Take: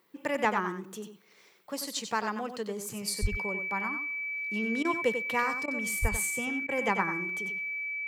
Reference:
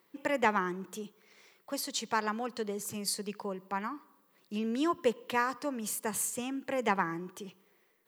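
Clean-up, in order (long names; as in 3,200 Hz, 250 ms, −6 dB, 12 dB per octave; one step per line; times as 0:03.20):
notch filter 2,300 Hz, Q 30
high-pass at the plosives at 0:03.21/0:06.01
repair the gap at 0:04.83/0:05.66/0:06.67, 17 ms
echo removal 93 ms −8.5 dB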